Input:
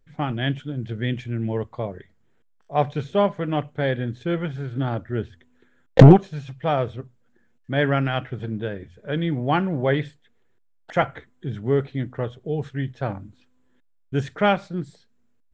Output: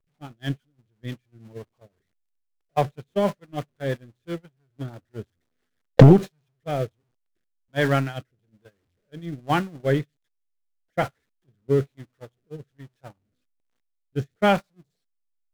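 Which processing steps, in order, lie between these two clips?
converter with a step at zero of −27 dBFS
noise gate −19 dBFS, range −41 dB
rotating-speaker cabinet horn 6 Hz, later 1.2 Hz, at 0:05.59

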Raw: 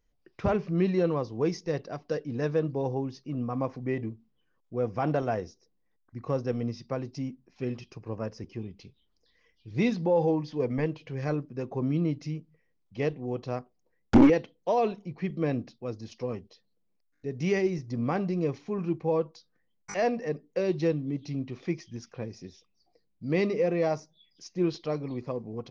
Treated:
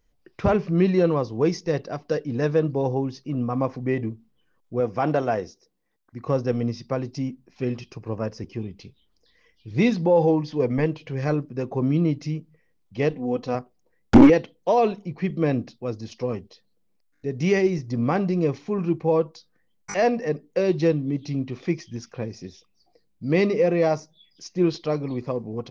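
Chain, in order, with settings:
0:04.80–0:06.27: low-shelf EQ 110 Hz −10.5 dB
0:13.10–0:13.55: comb filter 4 ms, depth 56%
level +6 dB

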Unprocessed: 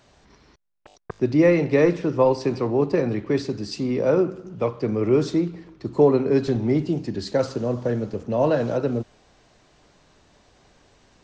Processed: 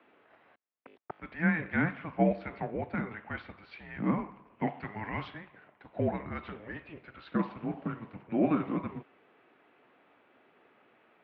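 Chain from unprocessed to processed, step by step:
single-sideband voice off tune −330 Hz 360–3,000 Hz
high-pass filter 280 Hz 12 dB per octave
0:04.67–0:05.28: high-shelf EQ 2,000 Hz +9.5 dB
level −1.5 dB

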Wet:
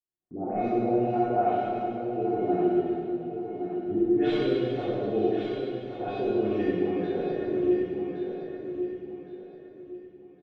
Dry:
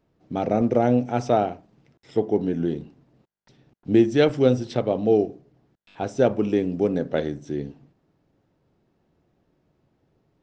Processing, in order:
running median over 9 samples
auto-filter low-pass sine 2.2 Hz 380–4,000 Hz
brickwall limiter −12 dBFS, peak gain reduction 10.5 dB
all-pass dispersion highs, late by 103 ms, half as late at 2,200 Hz
noise gate −50 dBFS, range −29 dB
tuned comb filter 360 Hz, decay 0.18 s, harmonics all, mix 90%
repeating echo 1,116 ms, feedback 30%, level −7.5 dB
convolution reverb RT60 2.4 s, pre-delay 18 ms, DRR −8.5 dB

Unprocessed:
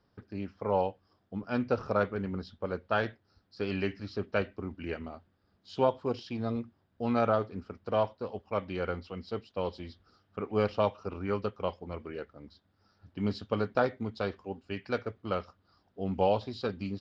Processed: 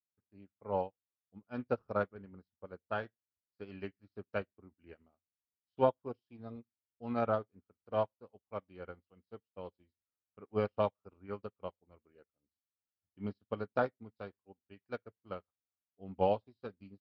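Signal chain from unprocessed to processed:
low-pass filter 2,600 Hz 6 dB per octave
on a send at −21.5 dB: convolution reverb RT60 0.25 s, pre-delay 3 ms
on the sum: expander for the loud parts 2.5 to 1, over −49 dBFS

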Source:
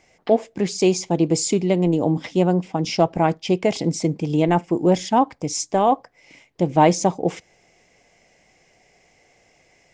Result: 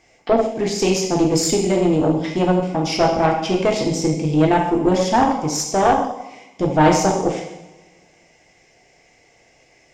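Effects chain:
coupled-rooms reverb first 0.83 s, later 2.4 s, from −25 dB, DRR −1 dB
tube saturation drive 9 dB, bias 0.55
level +2.5 dB

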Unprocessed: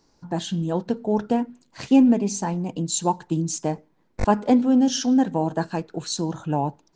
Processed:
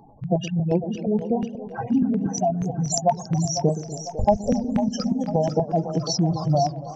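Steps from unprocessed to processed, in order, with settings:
in parallel at −1.5 dB: speech leveller within 5 dB
on the sum: octave-band graphic EQ 125/250/500/1,000/2,000/4,000/8,000 Hz +9/+3/+3/+12/+6/−4/+6 dB
downward compressor 2 to 1, threshold −23 dBFS, peak gain reduction 13.5 dB
gate on every frequency bin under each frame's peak −10 dB strong
auto-filter notch square 4.2 Hz 340–2,900 Hz
formants moved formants −4 semitones
on a send: echo with a time of its own for lows and highs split 420 Hz, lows 121 ms, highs 500 ms, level −10 dB
on the sum: feedback echo with a swinging delay time 275 ms, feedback 48%, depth 156 cents, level −18 dB

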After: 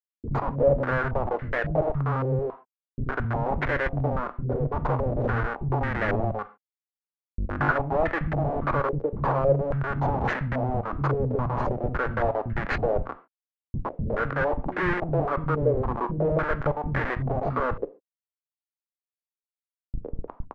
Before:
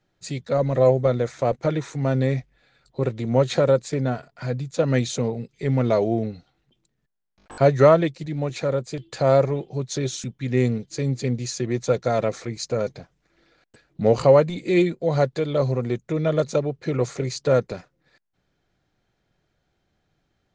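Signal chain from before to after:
camcorder AGC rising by 15 dB per second
low-shelf EQ 89 Hz +3 dB
mains-hum notches 60/120/180 Hz
downward compressor 5 to 1, threshold −28 dBFS, peak gain reduction 17 dB
comparator with hysteresis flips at −30.5 dBFS
multiband delay without the direct sound lows, highs 110 ms, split 270 Hz
on a send at −10 dB: convolution reverb, pre-delay 3 ms
on the sum: low-pass on a step sequencer 3.6 Hz 470–1,800 Hz
level +6.5 dB

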